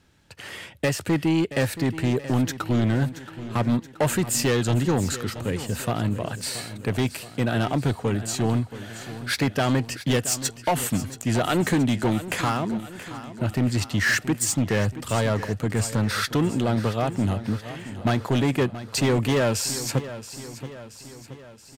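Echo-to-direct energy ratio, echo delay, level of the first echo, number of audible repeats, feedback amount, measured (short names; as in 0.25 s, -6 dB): -12.5 dB, 0.676 s, -14.0 dB, 5, 55%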